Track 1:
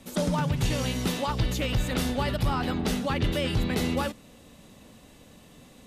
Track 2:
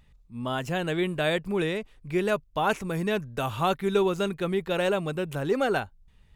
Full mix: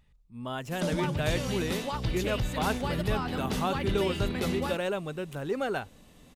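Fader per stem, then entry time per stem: -4.5 dB, -5.5 dB; 0.65 s, 0.00 s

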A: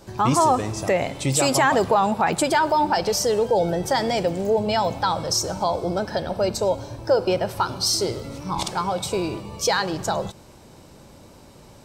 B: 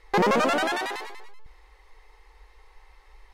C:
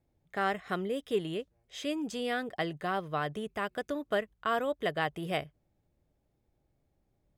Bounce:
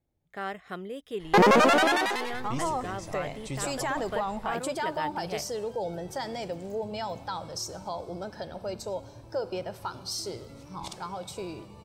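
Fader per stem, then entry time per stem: -12.5 dB, +3.0 dB, -4.5 dB; 2.25 s, 1.20 s, 0.00 s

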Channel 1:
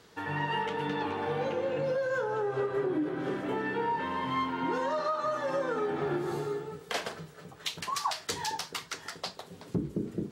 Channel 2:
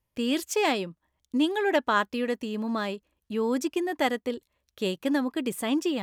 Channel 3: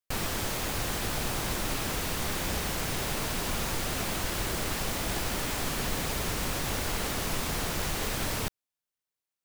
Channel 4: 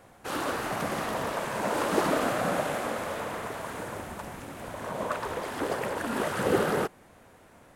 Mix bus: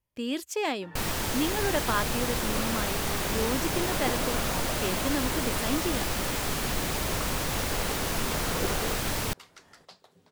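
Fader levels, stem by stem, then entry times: -14.0 dB, -4.5 dB, +1.5 dB, -8.0 dB; 0.65 s, 0.00 s, 0.85 s, 2.10 s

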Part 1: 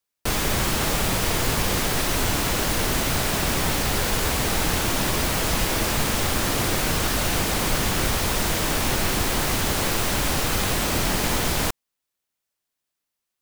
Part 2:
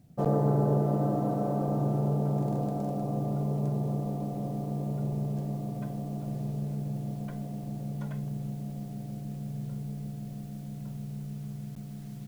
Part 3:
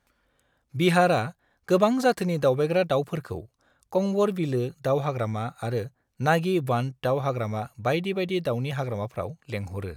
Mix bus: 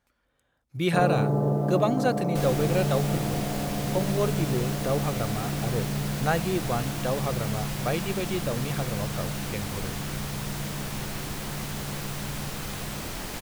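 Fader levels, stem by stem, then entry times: -12.0 dB, +1.0 dB, -4.0 dB; 2.10 s, 0.75 s, 0.00 s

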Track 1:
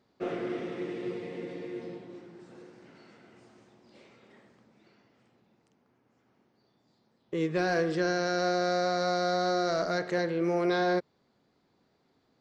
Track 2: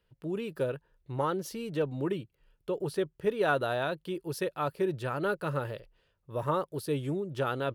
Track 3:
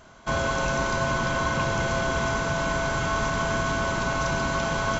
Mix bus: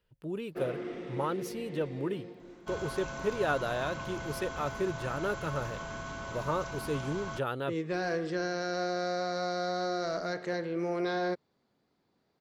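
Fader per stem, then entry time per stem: -4.5 dB, -2.5 dB, -14.5 dB; 0.35 s, 0.00 s, 2.40 s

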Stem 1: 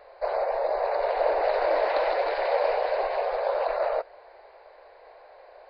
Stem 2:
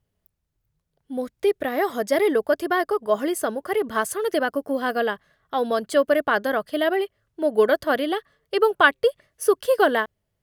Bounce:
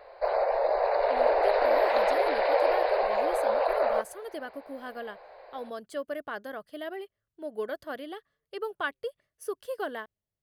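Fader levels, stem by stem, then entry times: +0.5 dB, -15.5 dB; 0.00 s, 0.00 s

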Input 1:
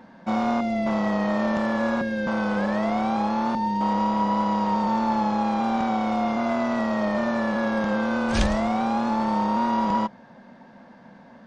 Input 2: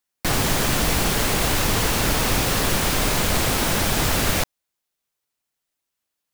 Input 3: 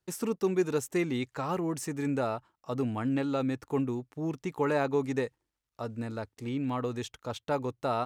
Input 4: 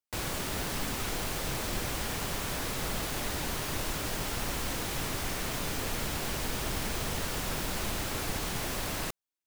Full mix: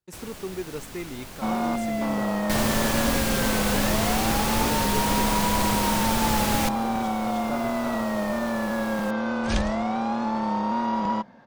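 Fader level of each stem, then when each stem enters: -2.5 dB, -5.0 dB, -6.0 dB, -8.0 dB; 1.15 s, 2.25 s, 0.00 s, 0.00 s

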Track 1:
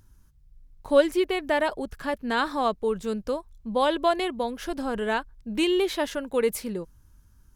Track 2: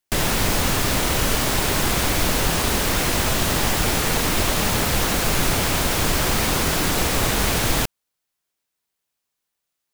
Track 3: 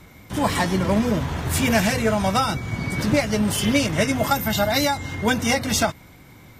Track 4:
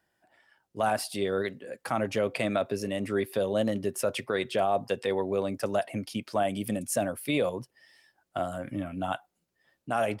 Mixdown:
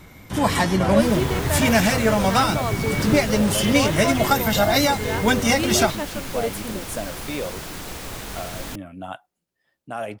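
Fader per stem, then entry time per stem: -3.0 dB, -13.0 dB, +1.5 dB, -2.5 dB; 0.00 s, 0.90 s, 0.00 s, 0.00 s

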